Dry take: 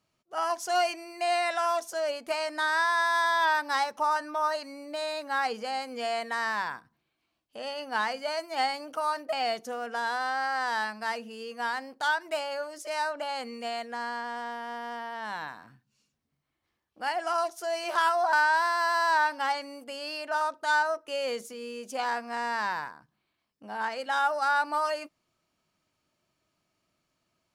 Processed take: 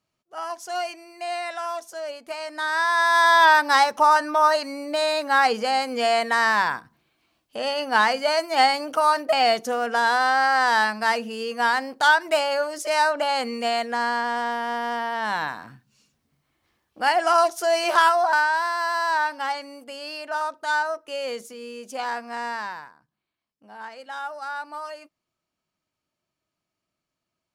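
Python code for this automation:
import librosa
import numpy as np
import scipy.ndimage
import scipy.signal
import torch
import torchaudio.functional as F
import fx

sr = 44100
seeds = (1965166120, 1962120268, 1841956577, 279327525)

y = fx.gain(x, sr, db=fx.line((2.36, -2.5), (3.33, 10.0), (17.86, 10.0), (18.51, 1.5), (22.48, 1.5), (22.89, -6.5)))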